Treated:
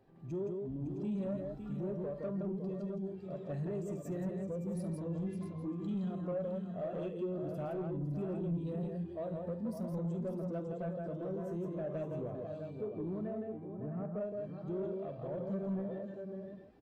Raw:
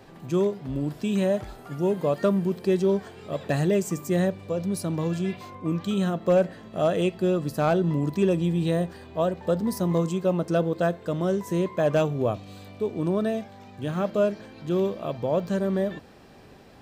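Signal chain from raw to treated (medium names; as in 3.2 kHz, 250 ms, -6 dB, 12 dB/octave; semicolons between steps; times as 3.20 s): compression 3:1, threshold -29 dBFS, peak gain reduction 10 dB; 2.57–3.09 s: static phaser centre 310 Hz, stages 6; 13.18–14.19 s: low-pass 3.1 kHz -> 1.2 kHz 24 dB/octave; multi-tap echo 48/71/167/559/661/816 ms -12/-14/-3.5/-7.5/-7.5/-15.5 dB; saturation -27.5 dBFS, distortion -12 dB; spectral contrast expander 1.5:1; trim -1.5 dB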